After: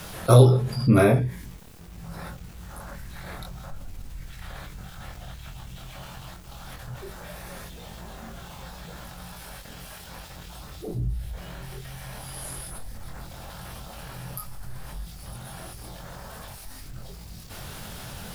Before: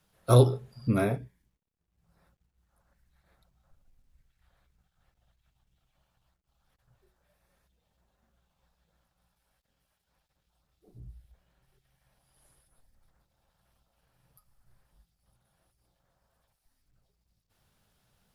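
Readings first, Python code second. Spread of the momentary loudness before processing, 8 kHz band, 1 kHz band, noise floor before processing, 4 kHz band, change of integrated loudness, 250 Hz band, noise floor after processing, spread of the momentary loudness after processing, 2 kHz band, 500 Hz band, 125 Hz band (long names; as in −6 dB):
13 LU, +11.0 dB, +7.5 dB, −80 dBFS, +9.5 dB, +0.5 dB, +8.0 dB, −43 dBFS, 21 LU, +11.5 dB, +6.5 dB, +7.5 dB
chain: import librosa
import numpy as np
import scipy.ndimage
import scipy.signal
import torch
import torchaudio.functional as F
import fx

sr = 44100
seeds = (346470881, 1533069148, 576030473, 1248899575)

y = fx.doubler(x, sr, ms=23.0, db=-4.0)
y = fx.env_flatten(y, sr, amount_pct=50)
y = y * 10.0 ** (2.0 / 20.0)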